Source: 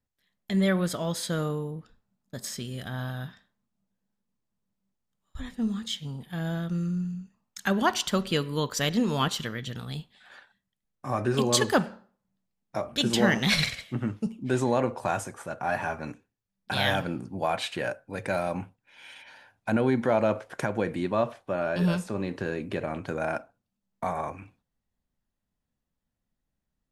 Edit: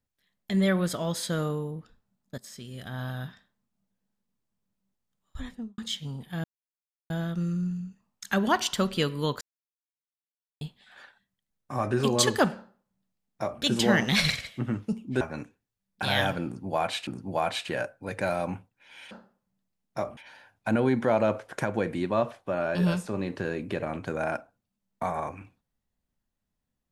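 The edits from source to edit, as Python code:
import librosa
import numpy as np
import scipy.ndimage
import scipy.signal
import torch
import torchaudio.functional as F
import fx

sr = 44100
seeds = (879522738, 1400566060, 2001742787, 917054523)

y = fx.studio_fade_out(x, sr, start_s=5.41, length_s=0.37)
y = fx.edit(y, sr, fx.fade_in_from(start_s=2.38, length_s=0.75, floor_db=-14.0),
    fx.insert_silence(at_s=6.44, length_s=0.66),
    fx.silence(start_s=8.75, length_s=1.2),
    fx.duplicate(start_s=11.89, length_s=1.06, to_s=19.18),
    fx.cut(start_s=14.55, length_s=1.35),
    fx.repeat(start_s=17.14, length_s=0.62, count=2), tone=tone)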